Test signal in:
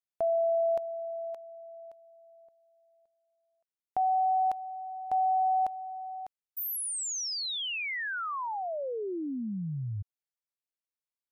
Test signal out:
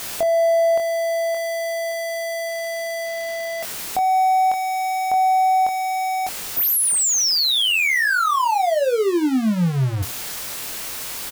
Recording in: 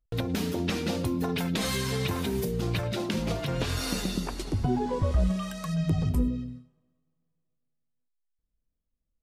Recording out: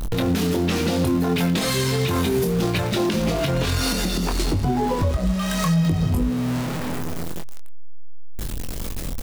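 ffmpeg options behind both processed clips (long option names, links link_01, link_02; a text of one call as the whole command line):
ffmpeg -i in.wav -filter_complex "[0:a]aeval=exprs='val(0)+0.5*0.0211*sgn(val(0))':channel_layout=same,asplit=2[link_01][link_02];[link_02]acompressor=threshold=-39dB:ratio=6:release=22,volume=-3dB[link_03];[link_01][link_03]amix=inputs=2:normalize=0,bandreject=frequency=60:width_type=h:width=6,bandreject=frequency=120:width_type=h:width=6,asplit=2[link_04][link_05];[link_05]adelay=23,volume=-6dB[link_06];[link_04][link_06]amix=inputs=2:normalize=0,alimiter=limit=-21.5dB:level=0:latency=1:release=338,volume=8.5dB" out.wav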